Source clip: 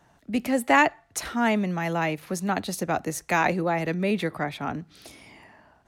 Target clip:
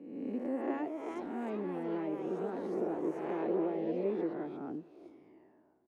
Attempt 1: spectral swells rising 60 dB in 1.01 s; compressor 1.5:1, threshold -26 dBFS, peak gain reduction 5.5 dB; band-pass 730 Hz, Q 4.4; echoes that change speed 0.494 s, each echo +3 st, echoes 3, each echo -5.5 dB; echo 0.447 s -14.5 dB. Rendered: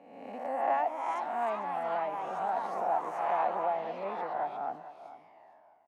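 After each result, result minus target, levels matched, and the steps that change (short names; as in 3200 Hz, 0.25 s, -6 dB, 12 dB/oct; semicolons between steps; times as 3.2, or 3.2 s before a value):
250 Hz band -17.0 dB; echo-to-direct +11.5 dB
change: band-pass 350 Hz, Q 4.4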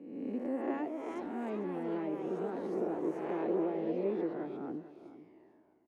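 echo-to-direct +11.5 dB
change: echo 0.447 s -26 dB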